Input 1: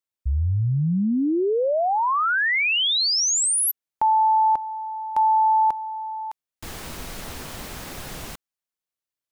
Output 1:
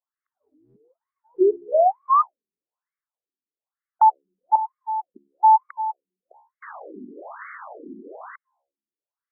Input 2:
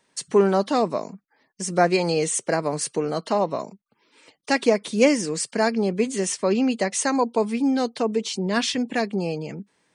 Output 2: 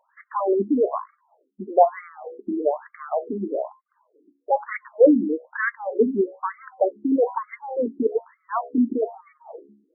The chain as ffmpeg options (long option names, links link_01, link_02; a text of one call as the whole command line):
ffmpeg -i in.wav -af "acontrast=30,bandreject=frequency=69.83:width_type=h:width=4,bandreject=frequency=139.66:width_type=h:width=4,bandreject=frequency=209.49:width_type=h:width=4,bandreject=frequency=279.32:width_type=h:width=4,bandreject=frequency=349.15:width_type=h:width=4,bandreject=frequency=418.98:width_type=h:width=4,bandreject=frequency=488.81:width_type=h:width=4,bandreject=frequency=558.64:width_type=h:width=4,bandreject=frequency=628.47:width_type=h:width=4,bandreject=frequency=698.3:width_type=h:width=4,bandreject=frequency=768.13:width_type=h:width=4,bandreject=frequency=837.96:width_type=h:width=4,bandreject=frequency=907.79:width_type=h:width=4,bandreject=frequency=977.62:width_type=h:width=4,bandreject=frequency=1047.45:width_type=h:width=4,afftfilt=real='re*between(b*sr/1024,270*pow(1600/270,0.5+0.5*sin(2*PI*1.1*pts/sr))/1.41,270*pow(1600/270,0.5+0.5*sin(2*PI*1.1*pts/sr))*1.41)':imag='im*between(b*sr/1024,270*pow(1600/270,0.5+0.5*sin(2*PI*1.1*pts/sr))/1.41,270*pow(1600/270,0.5+0.5*sin(2*PI*1.1*pts/sr))*1.41)':win_size=1024:overlap=0.75,volume=1.5dB" out.wav